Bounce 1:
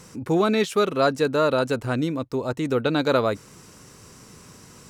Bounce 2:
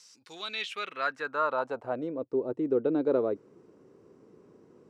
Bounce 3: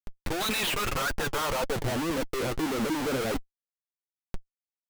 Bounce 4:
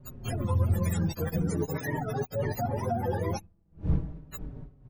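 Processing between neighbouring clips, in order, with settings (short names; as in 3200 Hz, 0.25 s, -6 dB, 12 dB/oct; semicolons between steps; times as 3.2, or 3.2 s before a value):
band-pass sweep 5000 Hz -> 380 Hz, 0.16–2.38
in parallel at -2 dB: limiter -27 dBFS, peak gain reduction 11.5 dB; on the sum: Schmitt trigger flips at -40.5 dBFS; flange 1.8 Hz, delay 3.1 ms, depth 6.5 ms, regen +45%; gain +5 dB
spectrum mirrored in octaves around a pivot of 470 Hz; wind noise 140 Hz -38 dBFS; endless flanger 5 ms -0.41 Hz; gain +3 dB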